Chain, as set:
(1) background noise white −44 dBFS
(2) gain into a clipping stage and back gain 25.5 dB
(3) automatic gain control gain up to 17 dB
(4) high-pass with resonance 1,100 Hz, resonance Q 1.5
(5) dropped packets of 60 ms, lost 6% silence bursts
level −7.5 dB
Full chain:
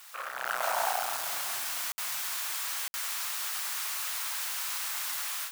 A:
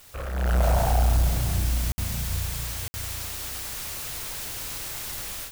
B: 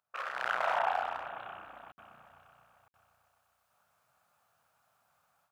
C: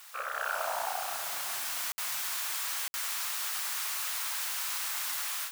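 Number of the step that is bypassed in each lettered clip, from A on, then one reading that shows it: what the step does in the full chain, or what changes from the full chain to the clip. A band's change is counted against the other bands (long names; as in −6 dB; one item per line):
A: 4, 500 Hz band +8.0 dB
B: 1, 4 kHz band −15.0 dB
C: 2, distortion level −9 dB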